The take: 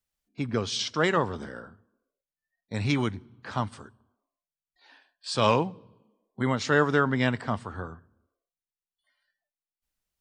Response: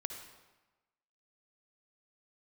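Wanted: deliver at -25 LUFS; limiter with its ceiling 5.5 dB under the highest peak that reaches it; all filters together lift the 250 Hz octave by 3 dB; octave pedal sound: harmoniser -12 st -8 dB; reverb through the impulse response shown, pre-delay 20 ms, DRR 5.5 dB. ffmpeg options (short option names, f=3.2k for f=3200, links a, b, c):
-filter_complex "[0:a]equalizer=f=250:t=o:g=3.5,alimiter=limit=-13.5dB:level=0:latency=1,asplit=2[a][b];[1:a]atrim=start_sample=2205,adelay=20[c];[b][c]afir=irnorm=-1:irlink=0,volume=-5dB[d];[a][d]amix=inputs=2:normalize=0,asplit=2[e][f];[f]asetrate=22050,aresample=44100,atempo=2,volume=-8dB[g];[e][g]amix=inputs=2:normalize=0,volume=1.5dB"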